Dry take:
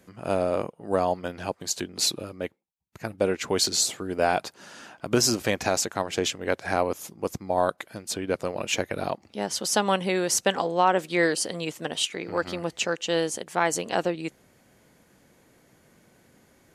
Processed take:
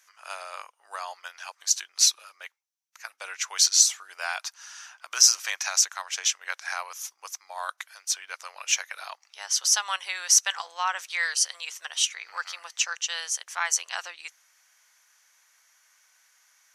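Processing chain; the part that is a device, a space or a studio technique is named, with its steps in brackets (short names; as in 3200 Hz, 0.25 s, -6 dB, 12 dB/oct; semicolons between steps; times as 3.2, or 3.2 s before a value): headphones lying on a table (HPF 1100 Hz 24 dB/oct; bell 5900 Hz +12 dB 0.3 oct)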